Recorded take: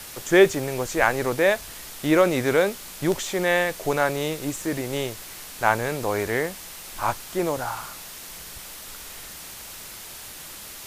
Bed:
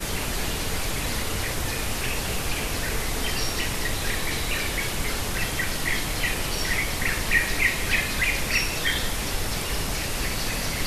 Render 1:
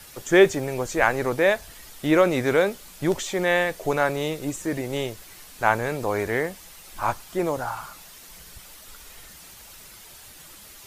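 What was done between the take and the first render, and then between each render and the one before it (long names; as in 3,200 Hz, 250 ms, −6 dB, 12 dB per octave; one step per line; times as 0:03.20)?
broadband denoise 8 dB, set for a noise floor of −40 dBFS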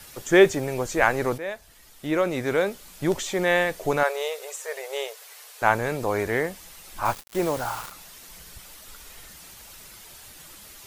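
0:01.38–0:03.27: fade in, from −14 dB
0:04.03–0:05.62: linear-phase brick-wall high-pass 400 Hz
0:07.05–0:07.92: bit-depth reduction 6 bits, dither none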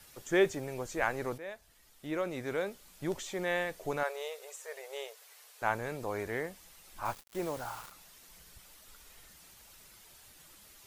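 level −11 dB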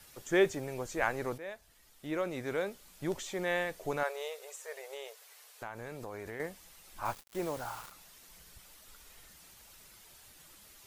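0:04.76–0:06.40: downward compressor, threshold −38 dBFS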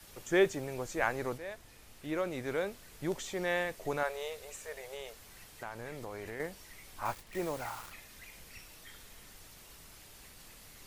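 mix in bed −30 dB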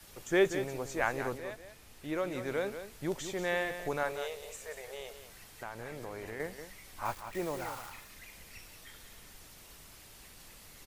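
single-tap delay 185 ms −10 dB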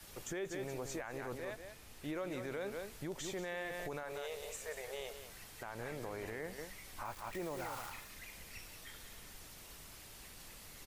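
downward compressor 2 to 1, threshold −37 dBFS, peak gain reduction 9 dB
brickwall limiter −32.5 dBFS, peak gain reduction 12 dB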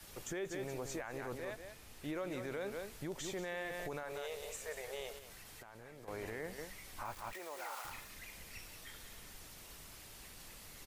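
0:05.18–0:06.08: downward compressor 10 to 1, threshold −49 dBFS
0:07.33–0:07.85: high-pass filter 640 Hz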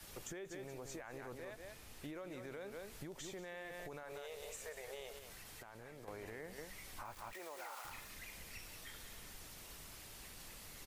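downward compressor, threshold −45 dBFS, peak gain reduction 8.5 dB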